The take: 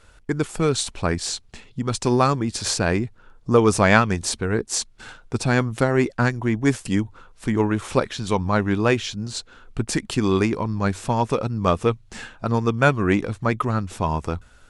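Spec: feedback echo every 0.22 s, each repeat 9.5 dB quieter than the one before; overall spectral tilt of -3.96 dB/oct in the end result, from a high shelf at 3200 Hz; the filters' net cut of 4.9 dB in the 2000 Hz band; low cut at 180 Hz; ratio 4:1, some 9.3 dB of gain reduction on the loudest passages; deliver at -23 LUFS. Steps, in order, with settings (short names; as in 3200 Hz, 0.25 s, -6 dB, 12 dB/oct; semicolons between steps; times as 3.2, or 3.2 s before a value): HPF 180 Hz; bell 2000 Hz -8 dB; high shelf 3200 Hz +3.5 dB; compressor 4:1, threshold -23 dBFS; feedback echo 0.22 s, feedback 33%, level -9.5 dB; gain +5.5 dB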